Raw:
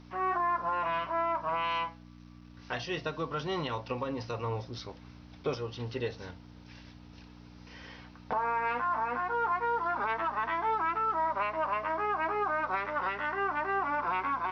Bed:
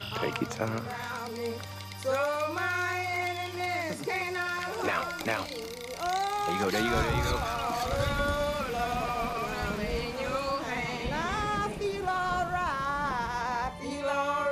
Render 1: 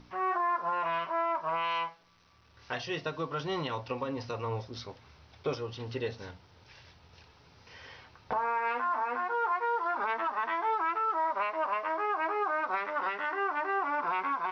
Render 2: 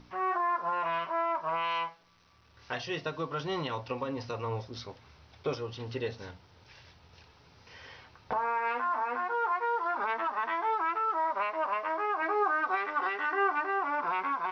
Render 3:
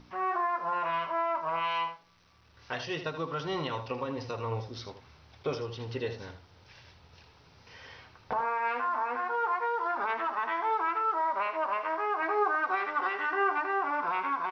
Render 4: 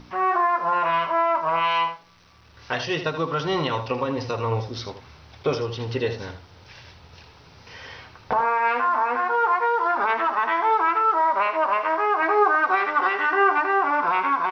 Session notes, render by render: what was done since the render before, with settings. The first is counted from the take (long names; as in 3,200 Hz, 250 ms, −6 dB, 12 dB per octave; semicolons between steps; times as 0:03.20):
hum removal 60 Hz, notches 5
0:12.22–0:13.65: comb filter 2.6 ms
single-tap delay 79 ms −10.5 dB
level +9 dB